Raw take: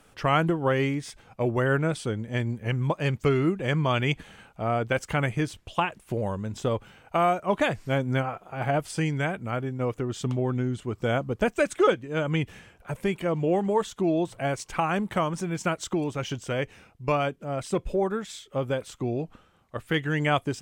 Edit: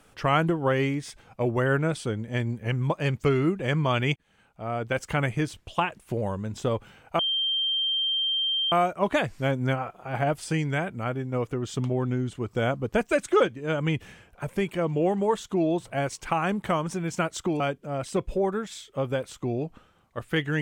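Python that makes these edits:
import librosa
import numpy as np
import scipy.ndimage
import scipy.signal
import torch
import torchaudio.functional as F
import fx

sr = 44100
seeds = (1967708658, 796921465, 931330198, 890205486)

y = fx.edit(x, sr, fx.fade_in_span(start_s=4.16, length_s=0.94),
    fx.insert_tone(at_s=7.19, length_s=1.53, hz=3160.0, db=-23.0),
    fx.cut(start_s=16.07, length_s=1.11), tone=tone)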